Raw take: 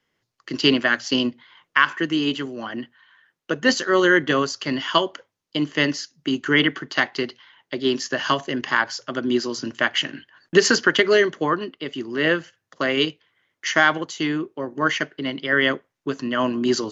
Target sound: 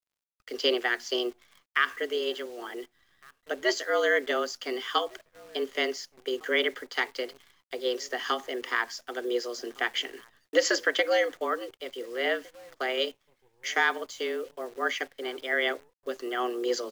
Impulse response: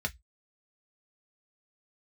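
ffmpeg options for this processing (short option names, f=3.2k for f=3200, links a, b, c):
-filter_complex "[0:a]asplit=2[a][b];[b]adelay=1458,volume=-24dB,highshelf=f=4k:g=-32.8[c];[a][c]amix=inputs=2:normalize=0,afreqshift=120,acrusher=bits=8:dc=4:mix=0:aa=0.000001,volume=-8dB"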